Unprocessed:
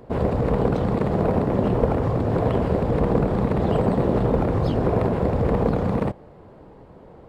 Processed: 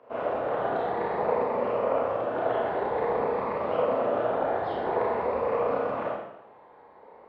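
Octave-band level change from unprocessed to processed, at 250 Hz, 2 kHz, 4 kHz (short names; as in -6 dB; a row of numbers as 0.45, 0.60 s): -15.0 dB, 0.0 dB, n/a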